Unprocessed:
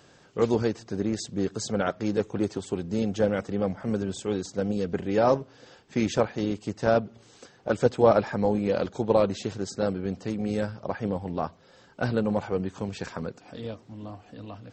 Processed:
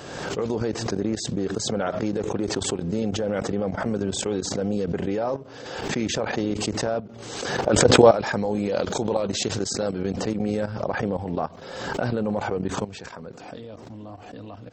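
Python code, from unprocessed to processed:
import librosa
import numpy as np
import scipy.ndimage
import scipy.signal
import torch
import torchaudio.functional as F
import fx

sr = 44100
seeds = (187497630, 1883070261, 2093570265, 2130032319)

y = fx.peak_eq(x, sr, hz=590.0, db=4.0, octaves=2.0)
y = fx.level_steps(y, sr, step_db=14)
y = fx.high_shelf(y, sr, hz=3300.0, db=9.5, at=(8.01, 10.14))
y = fx.pre_swell(y, sr, db_per_s=41.0)
y = y * 10.0 ** (3.0 / 20.0)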